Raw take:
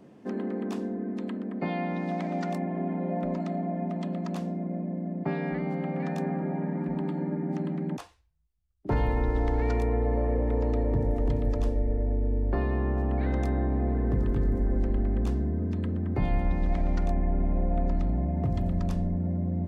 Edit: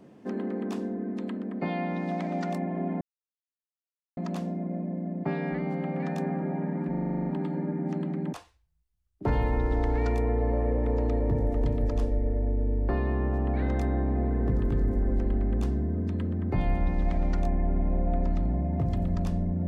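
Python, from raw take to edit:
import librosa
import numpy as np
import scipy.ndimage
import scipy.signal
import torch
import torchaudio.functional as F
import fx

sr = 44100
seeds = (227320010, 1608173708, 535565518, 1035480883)

y = fx.edit(x, sr, fx.silence(start_s=3.01, length_s=1.16),
    fx.stutter(start_s=6.9, slice_s=0.04, count=10), tone=tone)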